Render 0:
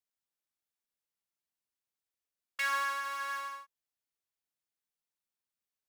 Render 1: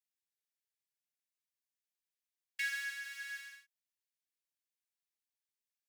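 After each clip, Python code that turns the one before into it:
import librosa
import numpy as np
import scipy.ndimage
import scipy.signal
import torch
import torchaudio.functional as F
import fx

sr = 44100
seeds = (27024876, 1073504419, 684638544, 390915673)

y = scipy.signal.sosfilt(scipy.signal.cheby1(6, 1.0, 1600.0, 'highpass', fs=sr, output='sos'), x)
y = F.gain(torch.from_numpy(y), -3.0).numpy()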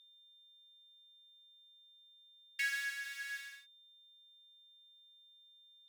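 y = x + 10.0 ** (-62.0 / 20.0) * np.sin(2.0 * np.pi * 3600.0 * np.arange(len(x)) / sr)
y = F.gain(torch.from_numpy(y), 1.0).numpy()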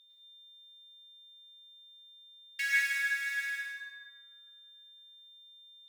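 y = fx.rev_plate(x, sr, seeds[0], rt60_s=1.9, hf_ratio=0.4, predelay_ms=90, drr_db=-5.5)
y = F.gain(torch.from_numpy(y), 1.5).numpy()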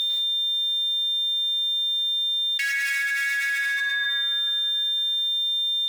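y = fx.env_flatten(x, sr, amount_pct=100)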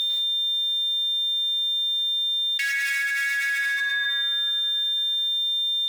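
y = x + 10.0 ** (-23.5 / 20.0) * np.pad(x, (int(448 * sr / 1000.0), 0))[:len(x)]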